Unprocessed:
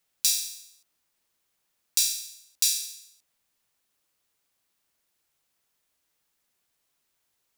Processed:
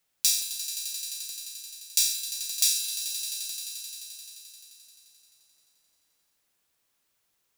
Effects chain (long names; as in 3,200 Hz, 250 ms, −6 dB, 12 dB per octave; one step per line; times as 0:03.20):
echo that builds up and dies away 87 ms, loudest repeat 5, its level −13.5 dB